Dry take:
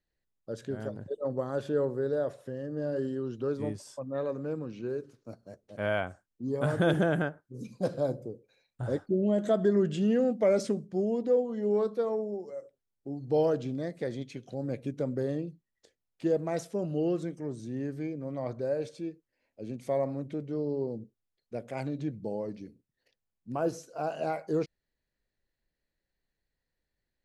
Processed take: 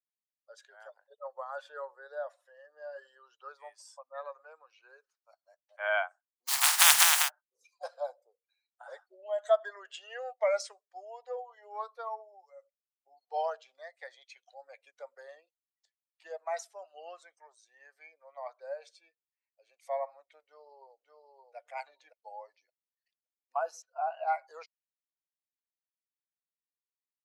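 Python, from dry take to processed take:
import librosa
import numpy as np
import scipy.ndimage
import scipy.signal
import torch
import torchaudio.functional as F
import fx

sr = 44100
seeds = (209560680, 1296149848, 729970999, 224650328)

y = fx.spec_flatten(x, sr, power=0.14, at=(6.47, 7.28), fade=0.02)
y = fx.echo_throw(y, sr, start_s=20.42, length_s=1.13, ms=570, feedback_pct=20, wet_db=-2.5)
y = fx.air_absorb(y, sr, metres=240.0, at=(23.82, 24.28))
y = fx.bin_expand(y, sr, power=1.5)
y = scipy.signal.sosfilt(scipy.signal.butter(8, 660.0, 'highpass', fs=sr, output='sos'), y)
y = y * 10.0 ** (7.0 / 20.0)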